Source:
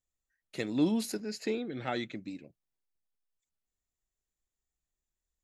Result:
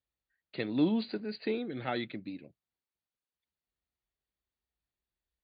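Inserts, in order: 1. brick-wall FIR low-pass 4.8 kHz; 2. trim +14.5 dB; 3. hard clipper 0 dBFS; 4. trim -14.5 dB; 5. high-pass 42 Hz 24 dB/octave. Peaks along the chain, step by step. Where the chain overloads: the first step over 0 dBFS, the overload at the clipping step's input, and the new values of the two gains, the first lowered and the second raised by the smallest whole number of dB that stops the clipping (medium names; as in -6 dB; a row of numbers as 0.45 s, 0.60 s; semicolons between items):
-17.0 dBFS, -2.5 dBFS, -2.5 dBFS, -17.0 dBFS, -17.5 dBFS; nothing clips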